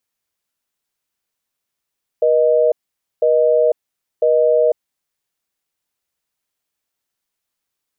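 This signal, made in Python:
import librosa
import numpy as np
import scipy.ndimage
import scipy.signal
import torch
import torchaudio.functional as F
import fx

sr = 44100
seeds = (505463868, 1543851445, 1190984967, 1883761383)

y = fx.call_progress(sr, length_s=2.9, kind='busy tone', level_db=-13.5)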